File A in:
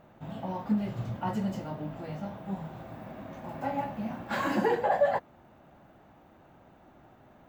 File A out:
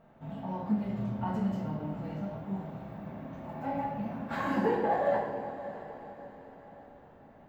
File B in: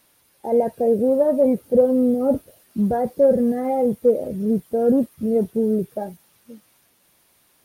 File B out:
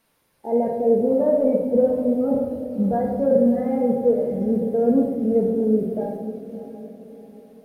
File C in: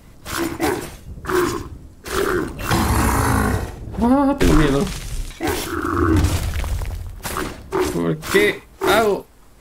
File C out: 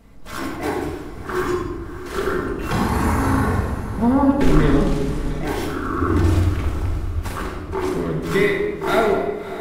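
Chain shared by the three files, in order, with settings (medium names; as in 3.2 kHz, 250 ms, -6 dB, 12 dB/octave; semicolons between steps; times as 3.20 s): treble shelf 3.1 kHz -7.5 dB; on a send: echo that smears into a reverb 632 ms, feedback 45%, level -13 dB; on the sum: simulated room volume 760 m³, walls mixed, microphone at 1.6 m; trim -5 dB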